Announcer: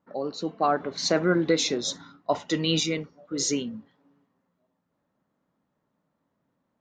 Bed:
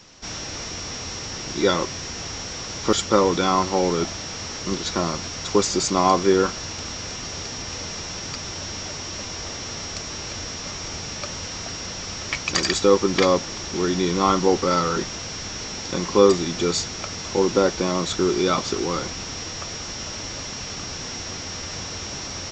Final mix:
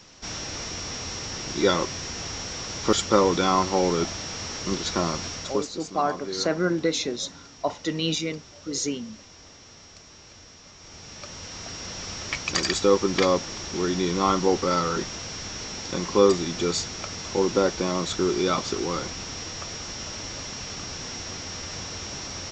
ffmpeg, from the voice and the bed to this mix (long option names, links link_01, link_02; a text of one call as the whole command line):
ffmpeg -i stem1.wav -i stem2.wav -filter_complex "[0:a]adelay=5350,volume=-1.5dB[link_01];[1:a]volume=12dB,afade=type=out:start_time=5.3:duration=0.39:silence=0.177828,afade=type=in:start_time=10.76:duration=1.27:silence=0.211349[link_02];[link_01][link_02]amix=inputs=2:normalize=0" out.wav